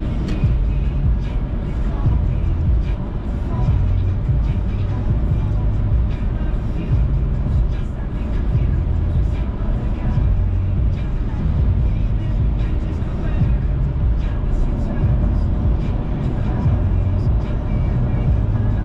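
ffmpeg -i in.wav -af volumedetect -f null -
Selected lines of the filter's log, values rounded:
mean_volume: -17.5 dB
max_volume: -7.1 dB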